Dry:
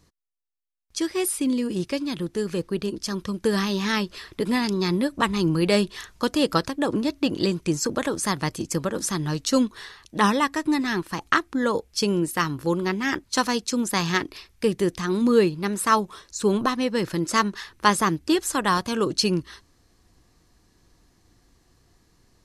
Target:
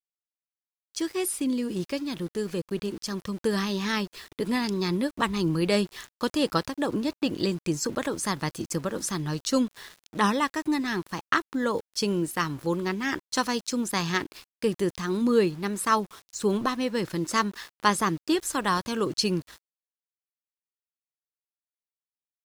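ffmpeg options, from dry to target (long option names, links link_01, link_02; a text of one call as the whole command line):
ffmpeg -i in.wav -af "aeval=exprs='val(0)*gte(abs(val(0)),0.00944)':channel_layout=same,volume=-3.5dB" out.wav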